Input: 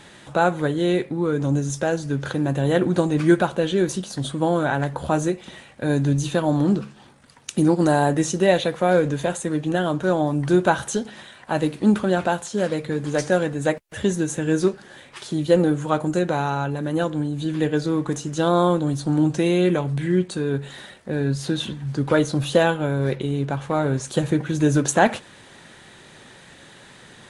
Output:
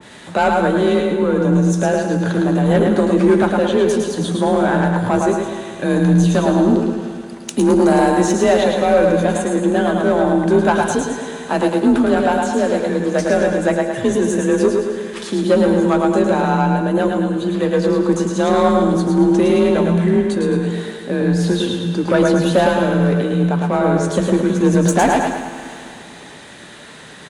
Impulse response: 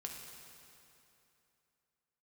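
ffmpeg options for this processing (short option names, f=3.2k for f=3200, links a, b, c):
-filter_complex "[0:a]asplit=2[a][b];[b]aecho=0:1:107|214|321|428|535:0.562|0.247|0.109|0.0479|0.0211[c];[a][c]amix=inputs=2:normalize=0,asoftclip=type=tanh:threshold=-12.5dB,afreqshift=33,asplit=2[d][e];[1:a]atrim=start_sample=2205,adelay=120[f];[e][f]afir=irnorm=-1:irlink=0,volume=-4.5dB[g];[d][g]amix=inputs=2:normalize=0,adynamicequalizer=threshold=0.0141:dfrequency=1700:dqfactor=0.7:tfrequency=1700:tqfactor=0.7:attack=5:release=100:ratio=0.375:range=2:mode=cutabove:tftype=highshelf,volume=5.5dB"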